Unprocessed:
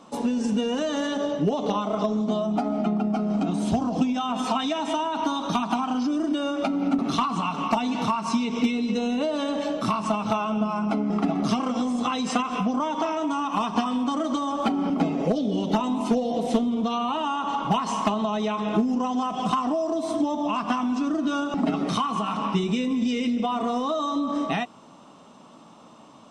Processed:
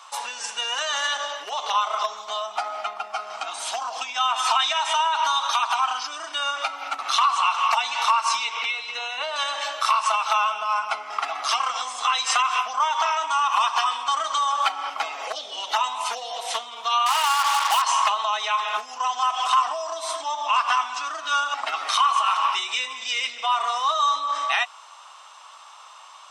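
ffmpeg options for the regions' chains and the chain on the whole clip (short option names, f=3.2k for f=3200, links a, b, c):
-filter_complex "[0:a]asettb=1/sr,asplit=3[a][b][c];[a]atrim=end=8.504[d];[b]atrim=start=8.5:end=9.36,asetpts=PTS-STARTPTS,afade=t=in:d=0.004:c=qsin,afade=t=out:st=0.856:d=0.004:c=qsin,acrossover=split=3900[e][f];[f]acompressor=threshold=-56dB:ratio=4:attack=1:release=60[g];[e][g]amix=inputs=2:normalize=0,bandreject=f=60:t=h:w=6,bandreject=f=120:t=h:w=6,bandreject=f=180:t=h:w=6,bandreject=f=240:t=h:w=6,bandreject=f=300:t=h:w=6,bandreject=f=360:t=h:w=6[h];[c]atrim=start=9.356[i];[d][h]acrossfade=d=0.004:c1=hsin:c2=qsin[j];[j][i]acrossfade=d=0.004:c1=qsin:c2=hsin,asettb=1/sr,asplit=3[k][l][m];[k]atrim=end=17.064[n];[l]atrim=start=17.06:end=17.82,asetpts=PTS-STARTPTS,afade=t=in:d=0.004:c=qsin,afade=t=out:st=0.756:d=0.004:c=qsin,highpass=370,acrusher=bits=4:mix=0:aa=0.5[o];[m]atrim=start=17.816[p];[n][o]acrossfade=d=0.004:c1=hsin:c2=qsin[q];[q][p]acrossfade=d=0.004:c1=qsin:c2=hsin,highpass=f=1k:w=0.5412,highpass=f=1k:w=1.3066,alimiter=level_in=18.5dB:limit=-1dB:release=50:level=0:latency=1,volume=-8.5dB"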